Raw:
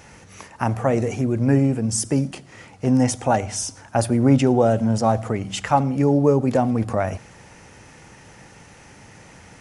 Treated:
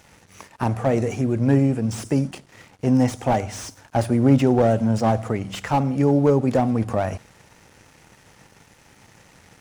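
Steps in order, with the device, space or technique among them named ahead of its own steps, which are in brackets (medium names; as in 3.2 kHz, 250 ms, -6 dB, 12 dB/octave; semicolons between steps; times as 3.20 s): early transistor amplifier (crossover distortion -48.5 dBFS; slew-rate limiter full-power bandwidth 120 Hz)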